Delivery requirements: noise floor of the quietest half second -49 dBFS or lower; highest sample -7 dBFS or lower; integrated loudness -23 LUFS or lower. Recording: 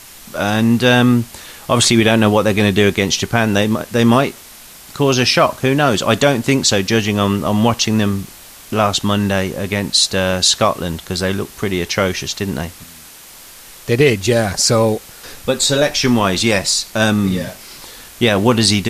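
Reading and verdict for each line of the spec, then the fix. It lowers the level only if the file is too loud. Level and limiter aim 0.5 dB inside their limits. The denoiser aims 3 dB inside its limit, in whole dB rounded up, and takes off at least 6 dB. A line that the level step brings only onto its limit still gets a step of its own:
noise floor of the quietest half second -39 dBFS: fail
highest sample -1.5 dBFS: fail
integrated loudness -15.0 LUFS: fail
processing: noise reduction 6 dB, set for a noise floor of -39 dBFS; trim -8.5 dB

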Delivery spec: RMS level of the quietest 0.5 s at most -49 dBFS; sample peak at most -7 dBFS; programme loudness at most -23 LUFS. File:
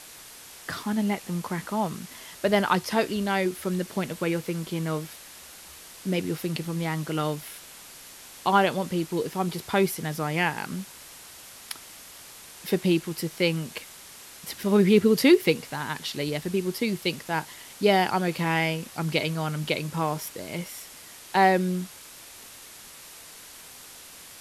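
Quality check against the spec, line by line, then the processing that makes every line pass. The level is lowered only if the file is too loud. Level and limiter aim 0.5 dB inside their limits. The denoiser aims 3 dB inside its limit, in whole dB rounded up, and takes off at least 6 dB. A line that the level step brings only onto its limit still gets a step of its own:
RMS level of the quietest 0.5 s -46 dBFS: fail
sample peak -7.5 dBFS: pass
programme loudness -26.5 LUFS: pass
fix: noise reduction 6 dB, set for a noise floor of -46 dBFS

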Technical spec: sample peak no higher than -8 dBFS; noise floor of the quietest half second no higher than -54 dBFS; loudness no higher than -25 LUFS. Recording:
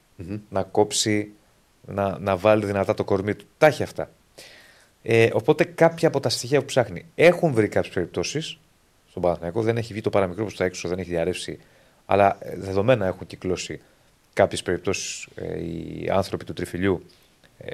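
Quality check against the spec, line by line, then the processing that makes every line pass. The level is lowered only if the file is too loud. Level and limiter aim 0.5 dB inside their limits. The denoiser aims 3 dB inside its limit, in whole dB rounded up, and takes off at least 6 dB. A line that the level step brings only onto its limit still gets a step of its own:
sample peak -3.5 dBFS: fail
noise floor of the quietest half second -60 dBFS: pass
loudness -23.5 LUFS: fail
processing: trim -2 dB; peak limiter -8.5 dBFS

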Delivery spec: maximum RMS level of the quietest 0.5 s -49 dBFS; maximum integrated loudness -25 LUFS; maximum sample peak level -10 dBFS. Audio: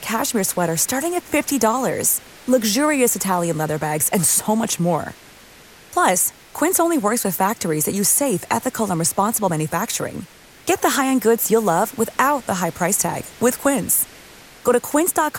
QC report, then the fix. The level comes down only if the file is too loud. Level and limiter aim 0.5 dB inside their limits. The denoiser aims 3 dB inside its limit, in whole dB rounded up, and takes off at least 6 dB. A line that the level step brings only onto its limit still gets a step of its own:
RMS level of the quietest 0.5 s -45 dBFS: fail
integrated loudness -19.0 LUFS: fail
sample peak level -5.0 dBFS: fail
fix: trim -6.5 dB

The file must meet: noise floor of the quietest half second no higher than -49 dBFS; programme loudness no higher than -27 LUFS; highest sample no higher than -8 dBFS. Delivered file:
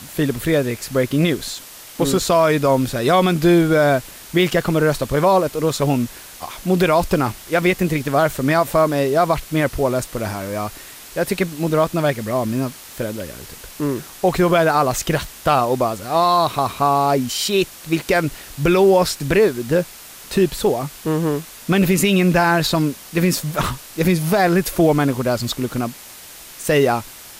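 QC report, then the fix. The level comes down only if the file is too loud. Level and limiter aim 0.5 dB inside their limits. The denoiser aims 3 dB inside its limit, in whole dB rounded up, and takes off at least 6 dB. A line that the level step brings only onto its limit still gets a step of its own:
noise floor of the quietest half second -39 dBFS: fail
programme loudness -18.5 LUFS: fail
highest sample -5.0 dBFS: fail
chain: noise reduction 6 dB, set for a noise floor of -39 dBFS; trim -9 dB

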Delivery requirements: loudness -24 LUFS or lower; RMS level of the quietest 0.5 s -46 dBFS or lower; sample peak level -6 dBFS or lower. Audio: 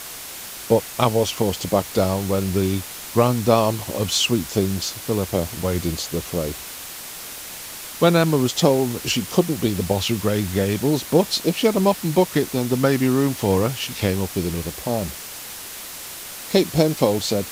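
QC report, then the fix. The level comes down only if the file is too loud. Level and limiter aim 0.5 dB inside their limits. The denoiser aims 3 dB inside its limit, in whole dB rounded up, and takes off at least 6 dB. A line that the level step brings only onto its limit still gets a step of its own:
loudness -21.0 LUFS: fail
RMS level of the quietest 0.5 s -35 dBFS: fail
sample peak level -2.5 dBFS: fail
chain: noise reduction 11 dB, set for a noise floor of -35 dBFS; trim -3.5 dB; peak limiter -6.5 dBFS

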